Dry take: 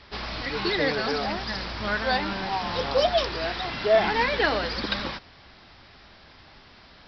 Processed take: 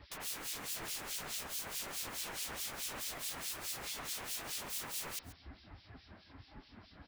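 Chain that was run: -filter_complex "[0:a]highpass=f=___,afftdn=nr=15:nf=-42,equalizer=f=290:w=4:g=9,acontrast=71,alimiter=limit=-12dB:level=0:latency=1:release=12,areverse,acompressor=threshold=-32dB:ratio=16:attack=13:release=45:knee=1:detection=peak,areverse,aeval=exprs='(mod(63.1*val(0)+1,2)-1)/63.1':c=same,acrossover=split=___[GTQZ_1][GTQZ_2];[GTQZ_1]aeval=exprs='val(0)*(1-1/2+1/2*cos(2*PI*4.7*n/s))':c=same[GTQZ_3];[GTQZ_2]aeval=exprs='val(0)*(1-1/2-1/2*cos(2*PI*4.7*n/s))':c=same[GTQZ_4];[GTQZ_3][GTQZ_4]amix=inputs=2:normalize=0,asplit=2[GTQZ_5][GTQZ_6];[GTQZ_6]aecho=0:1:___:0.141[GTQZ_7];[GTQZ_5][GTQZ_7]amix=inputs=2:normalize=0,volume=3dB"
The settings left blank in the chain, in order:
43, 2300, 134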